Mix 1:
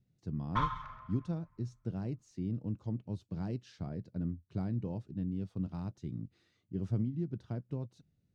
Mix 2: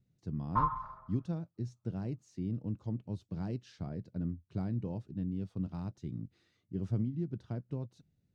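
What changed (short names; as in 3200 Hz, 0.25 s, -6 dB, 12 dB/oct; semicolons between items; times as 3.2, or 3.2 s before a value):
background: add synth low-pass 950 Hz, resonance Q 1.8; reverb: off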